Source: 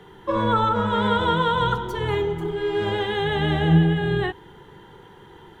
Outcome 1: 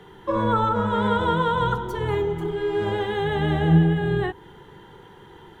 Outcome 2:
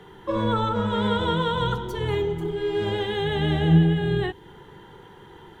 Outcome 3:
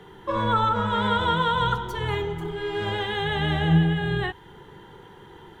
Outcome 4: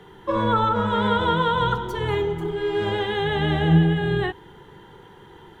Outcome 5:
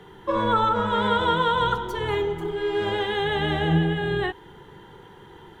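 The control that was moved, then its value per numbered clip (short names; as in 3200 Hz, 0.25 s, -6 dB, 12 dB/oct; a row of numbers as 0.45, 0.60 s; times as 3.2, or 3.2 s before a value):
dynamic EQ, frequency: 3300, 1200, 340, 9300, 130 Hz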